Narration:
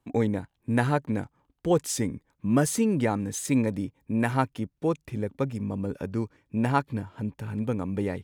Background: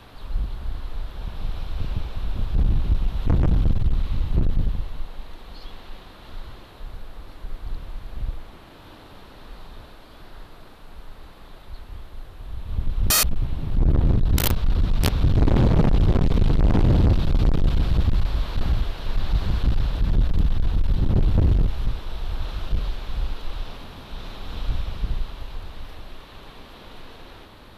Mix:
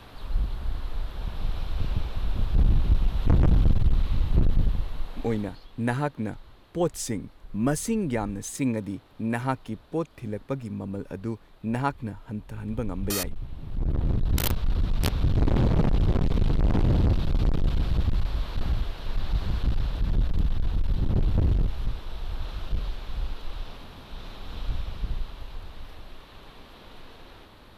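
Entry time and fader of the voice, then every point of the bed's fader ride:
5.10 s, -2.5 dB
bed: 5.39 s -0.5 dB
5.68 s -11.5 dB
13.47 s -11.5 dB
14.32 s -4.5 dB

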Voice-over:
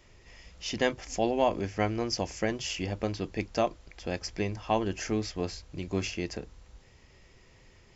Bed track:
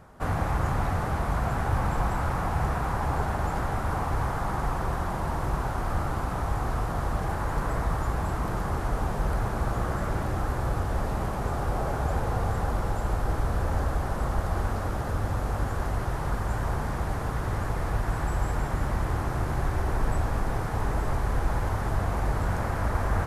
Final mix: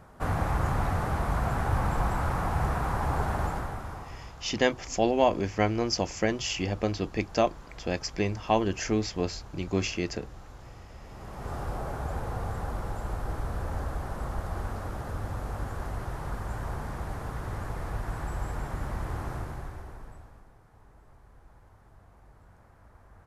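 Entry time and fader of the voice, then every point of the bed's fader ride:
3.80 s, +3.0 dB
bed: 3.43 s -1 dB
4.35 s -20 dB
11.01 s -20 dB
11.53 s -6 dB
19.33 s -6 dB
20.55 s -29 dB

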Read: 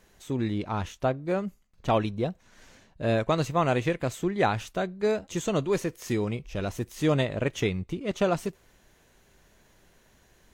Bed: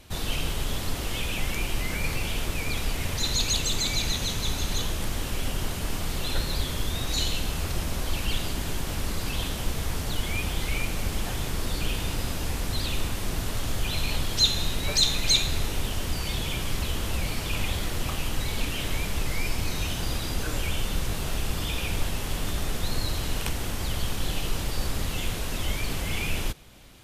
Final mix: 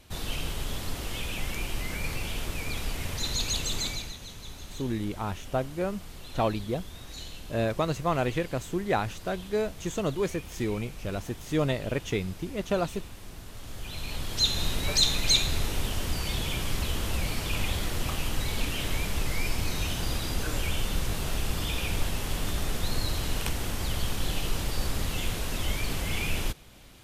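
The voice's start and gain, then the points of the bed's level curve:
4.50 s, -2.5 dB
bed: 3.85 s -4 dB
4.16 s -14.5 dB
13.5 s -14.5 dB
14.65 s -1 dB

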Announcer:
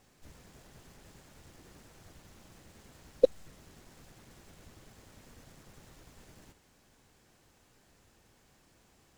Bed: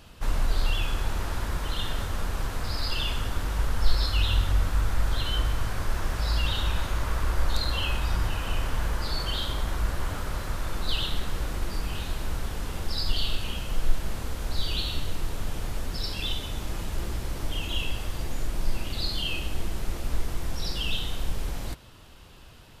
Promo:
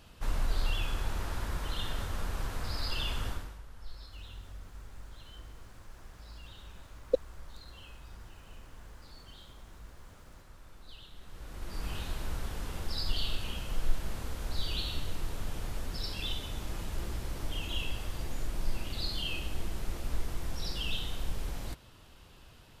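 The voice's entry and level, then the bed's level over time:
3.90 s, -5.0 dB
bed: 3.3 s -5.5 dB
3.62 s -23 dB
11.12 s -23 dB
11.87 s -5.5 dB

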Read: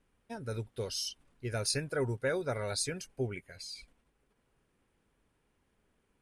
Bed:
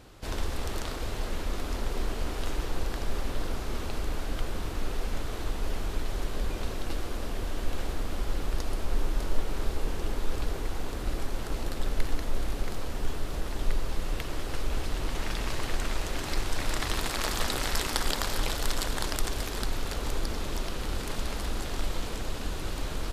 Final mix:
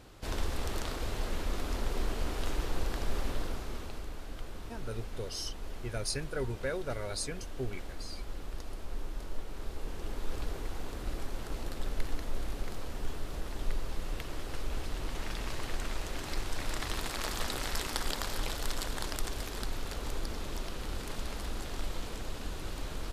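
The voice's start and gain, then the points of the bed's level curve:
4.40 s, -3.0 dB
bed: 3.29 s -2 dB
4.12 s -10.5 dB
9.52 s -10.5 dB
10.34 s -5.5 dB

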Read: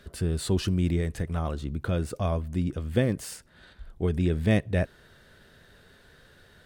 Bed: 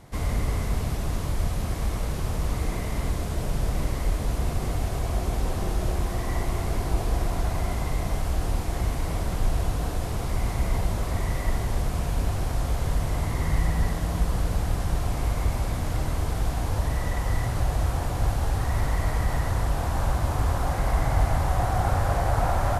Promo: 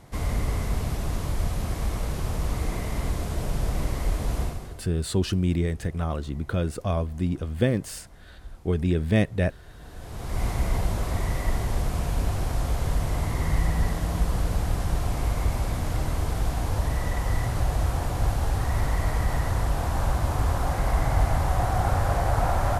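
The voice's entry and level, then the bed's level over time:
4.65 s, +1.5 dB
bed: 4.42 s -0.5 dB
4.93 s -23.5 dB
9.62 s -23.5 dB
10.42 s 0 dB

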